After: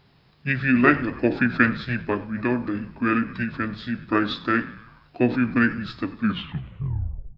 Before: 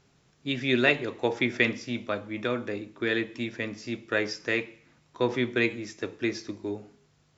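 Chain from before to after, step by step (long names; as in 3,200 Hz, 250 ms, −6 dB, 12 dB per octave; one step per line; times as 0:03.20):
turntable brake at the end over 1.20 s
echo with shifted repeats 96 ms, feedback 59%, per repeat −76 Hz, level −19 dB
formants moved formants −6 semitones
level +6 dB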